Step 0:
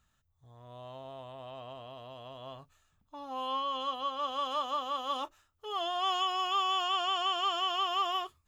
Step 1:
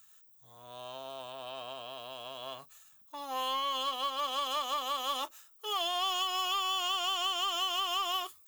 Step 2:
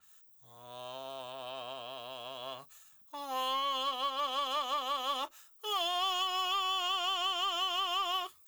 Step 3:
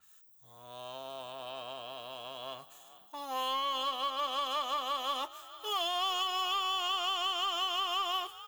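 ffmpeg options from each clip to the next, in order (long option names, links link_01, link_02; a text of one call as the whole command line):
ffmpeg -i in.wav -filter_complex "[0:a]aeval=exprs='if(lt(val(0),0),0.708*val(0),val(0))':channel_layout=same,aemphasis=mode=production:type=riaa,acrossover=split=350[link_01][link_02];[link_02]acompressor=threshold=-34dB:ratio=6[link_03];[link_01][link_03]amix=inputs=2:normalize=0,volume=4.5dB" out.wav
ffmpeg -i in.wav -af "adynamicequalizer=threshold=0.00398:dfrequency=4800:dqfactor=0.7:tfrequency=4800:tqfactor=0.7:attack=5:release=100:ratio=0.375:range=3.5:mode=cutabove:tftype=highshelf" out.wav
ffmpeg -i in.wav -filter_complex "[0:a]asplit=5[link_01][link_02][link_03][link_04][link_05];[link_02]adelay=441,afreqshift=56,volume=-16.5dB[link_06];[link_03]adelay=882,afreqshift=112,volume=-24dB[link_07];[link_04]adelay=1323,afreqshift=168,volume=-31.6dB[link_08];[link_05]adelay=1764,afreqshift=224,volume=-39.1dB[link_09];[link_01][link_06][link_07][link_08][link_09]amix=inputs=5:normalize=0" out.wav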